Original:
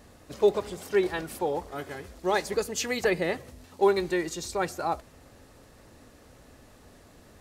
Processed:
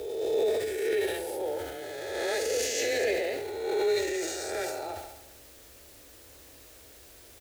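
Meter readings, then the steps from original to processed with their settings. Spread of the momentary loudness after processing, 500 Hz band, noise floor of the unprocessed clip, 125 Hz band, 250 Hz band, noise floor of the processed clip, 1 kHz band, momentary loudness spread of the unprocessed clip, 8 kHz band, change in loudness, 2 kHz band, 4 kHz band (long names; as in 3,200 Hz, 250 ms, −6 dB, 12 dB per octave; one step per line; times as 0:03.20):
23 LU, −1.0 dB, −55 dBFS, −10.0 dB, −6.0 dB, −52 dBFS, −7.0 dB, 11 LU, +3.0 dB, −1.5 dB, −1.5 dB, +2.0 dB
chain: peak hold with a rise ahead of every peak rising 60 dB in 1.93 s
in parallel at −3 dB: output level in coarse steps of 12 dB
on the sum: phaser with its sweep stopped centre 430 Hz, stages 4
double-tracking delay 23 ms −11.5 dB
bit-depth reduction 8 bits, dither triangular
parametric band 100 Hz −13.5 dB 0.27 octaves
upward compression, threshold −39 dBFS
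feedback echo with a high-pass in the loop 68 ms, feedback 66%, high-pass 190 Hz, level −11 dB
transient designer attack −6 dB, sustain +6 dB
frequency shifter +21 Hz
level −8.5 dB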